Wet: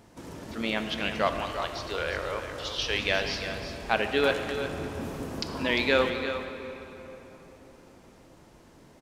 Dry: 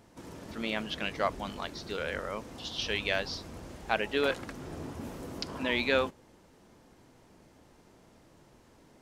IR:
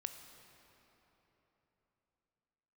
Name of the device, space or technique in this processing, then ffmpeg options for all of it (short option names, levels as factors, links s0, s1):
cave: -filter_complex "[0:a]aecho=1:1:350:0.316[s0];[1:a]atrim=start_sample=2205[s1];[s0][s1]afir=irnorm=-1:irlink=0,asettb=1/sr,asplit=3[s2][s3][s4];[s2]atrim=end=1.414[s5];[s3]atrim=start=1.41:end=2.95,asetpts=PTS-STARTPTS,afade=t=in:d=0.004:c=qsin,afade=t=out:st=1.536:d=0.004:c=qsin,equalizer=f=210:t=o:w=0.51:g=-13.5[s6];[s4]atrim=start=2.946[s7];[s5][s6]acrossfade=d=0.004:c1=hsin:c2=qsin[s8];[s8][s7]acrossfade=d=0.004:c1=qsin:c2=hsin,volume=2.11"